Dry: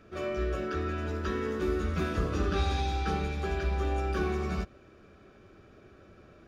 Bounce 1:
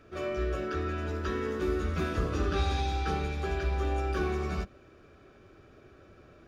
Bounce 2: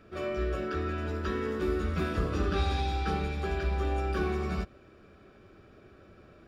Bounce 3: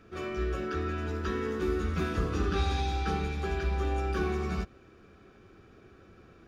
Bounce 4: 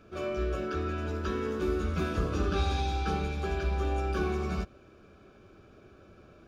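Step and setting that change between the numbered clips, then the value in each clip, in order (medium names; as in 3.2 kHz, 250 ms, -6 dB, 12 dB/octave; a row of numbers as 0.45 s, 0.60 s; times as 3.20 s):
band-stop, frequency: 200 Hz, 6.3 kHz, 600 Hz, 1.9 kHz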